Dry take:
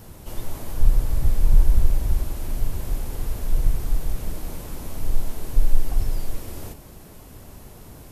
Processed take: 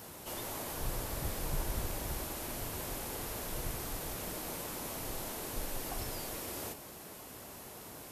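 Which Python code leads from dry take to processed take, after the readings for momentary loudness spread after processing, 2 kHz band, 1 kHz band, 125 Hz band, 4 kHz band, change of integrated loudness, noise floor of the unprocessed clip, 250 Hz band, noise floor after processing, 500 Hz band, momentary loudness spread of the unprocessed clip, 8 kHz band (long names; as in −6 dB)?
10 LU, +0.5 dB, 0.0 dB, −16.0 dB, +1.0 dB, −11.5 dB, −44 dBFS, −6.5 dB, −49 dBFS, −2.0 dB, 22 LU, +1.0 dB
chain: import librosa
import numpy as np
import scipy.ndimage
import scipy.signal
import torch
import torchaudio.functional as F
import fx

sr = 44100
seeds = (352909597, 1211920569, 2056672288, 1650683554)

y = fx.highpass(x, sr, hz=500.0, slope=6)
y = y * 10.0 ** (1.0 / 20.0)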